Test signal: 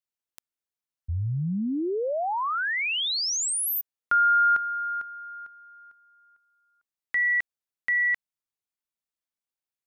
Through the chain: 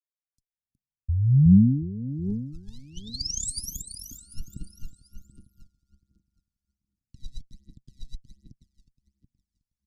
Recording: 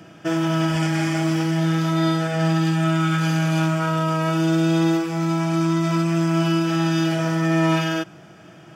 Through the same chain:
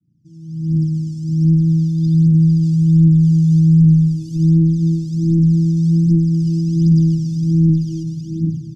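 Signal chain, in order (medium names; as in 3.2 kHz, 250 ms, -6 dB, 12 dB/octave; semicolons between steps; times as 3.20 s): fade-in on the opening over 2.87 s; peaking EQ 130 Hz +5 dB 0.49 oct; feedback delay 366 ms, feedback 44%, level -7.5 dB; phaser 1.3 Hz, delay 1.2 ms, feedback 80%; valve stage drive 2 dB, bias 0.55; low-pass 8.1 kHz 12 dB/octave; compression 4:1, threshold -17 dBFS; elliptic band-stop 260–4900 Hz, stop band 50 dB; tilt shelf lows +7.5 dB, about 710 Hz; trim +3 dB; MP3 80 kbps 48 kHz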